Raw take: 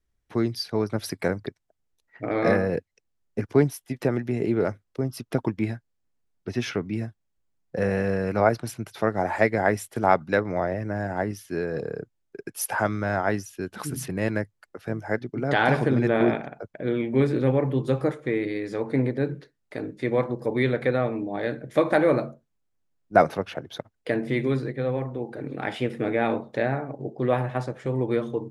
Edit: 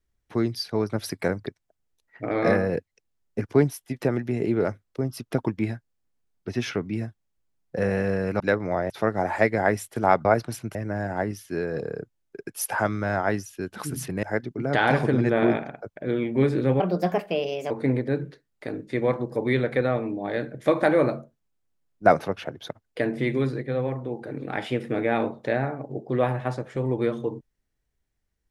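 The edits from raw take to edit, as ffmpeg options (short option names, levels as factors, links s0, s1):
-filter_complex "[0:a]asplit=8[s0][s1][s2][s3][s4][s5][s6][s7];[s0]atrim=end=8.402[s8];[s1]atrim=start=10.248:end=10.752[s9];[s2]atrim=start=8.898:end=10.252[s10];[s3]atrim=start=8.398:end=8.902[s11];[s4]atrim=start=10.748:end=14.232[s12];[s5]atrim=start=15.008:end=17.584[s13];[s6]atrim=start=17.58:end=18.8,asetpts=PTS-STARTPTS,asetrate=59535,aresample=44100,atrim=end_sample=39853,asetpts=PTS-STARTPTS[s14];[s7]atrim=start=18.796[s15];[s8][s9]acrossfade=d=0.004:c1=hsin:c2=hsin[s16];[s16][s10]acrossfade=d=0.004:c1=hsin:c2=hsin[s17];[s17][s11]acrossfade=d=0.004:c1=hsin:c2=hsin[s18];[s18][s12]acrossfade=d=0.004:c1=hsin:c2=hsin[s19];[s19][s13]acrossfade=d=0.004:c1=hsin:c2=hsin[s20];[s20][s14]acrossfade=d=0.004:c1=hsin:c2=hsin[s21];[s21][s15]acrossfade=d=0.004:c1=hsin:c2=hsin"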